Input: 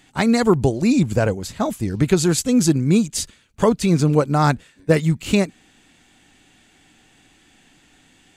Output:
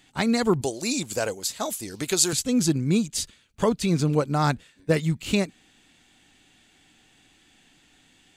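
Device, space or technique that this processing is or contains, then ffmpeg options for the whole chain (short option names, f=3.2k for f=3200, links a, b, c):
presence and air boost: -filter_complex "[0:a]equalizer=f=3.7k:t=o:w=1.2:g=4,highshelf=f=11k:g=3.5,asettb=1/sr,asplit=3[a][b][c];[a]atrim=end=0.614[d];[b]atrim=start=0.61:end=2.33,asetpts=PTS-STARTPTS,afade=t=in:d=0.004:c=qsin,afade=t=out:st=1.716:d=0.004:c=qsin,bass=f=250:g=-14,treble=f=4k:g=11[e];[c]atrim=start=2.326[f];[d][e]acrossfade=d=0.004:c1=hsin:c2=qsin[g];[g][f]acrossfade=d=0.004:c1=qsin:c2=hsin,volume=-6dB"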